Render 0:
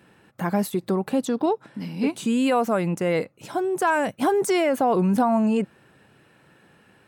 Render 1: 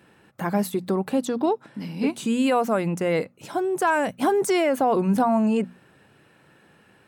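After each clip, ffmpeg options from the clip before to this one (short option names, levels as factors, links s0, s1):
-af "bandreject=f=60:t=h:w=6,bandreject=f=120:t=h:w=6,bandreject=f=180:t=h:w=6,bandreject=f=240:t=h:w=6"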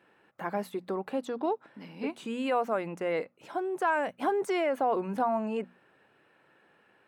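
-af "bass=f=250:g=-13,treble=f=4000:g=-12,volume=0.531"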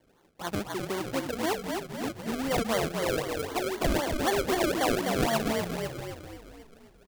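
-filter_complex "[0:a]asplit=9[s0][s1][s2][s3][s4][s5][s6][s7][s8];[s1]adelay=252,afreqshift=-43,volume=0.631[s9];[s2]adelay=504,afreqshift=-86,volume=0.355[s10];[s3]adelay=756,afreqshift=-129,volume=0.197[s11];[s4]adelay=1008,afreqshift=-172,volume=0.111[s12];[s5]adelay=1260,afreqshift=-215,volume=0.0624[s13];[s6]adelay=1512,afreqshift=-258,volume=0.0347[s14];[s7]adelay=1764,afreqshift=-301,volume=0.0195[s15];[s8]adelay=2016,afreqshift=-344,volume=0.0108[s16];[s0][s9][s10][s11][s12][s13][s14][s15][s16]amix=inputs=9:normalize=0,acrusher=samples=33:mix=1:aa=0.000001:lfo=1:lforange=33:lforate=3.9"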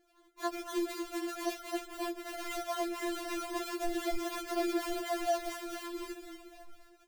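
-af "alimiter=level_in=1.26:limit=0.0631:level=0:latency=1:release=139,volume=0.794,afftfilt=real='re*4*eq(mod(b,16),0)':imag='im*4*eq(mod(b,16),0)':win_size=2048:overlap=0.75"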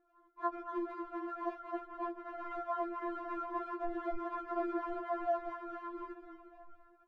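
-af "lowpass=f=1200:t=q:w=4,volume=0.531"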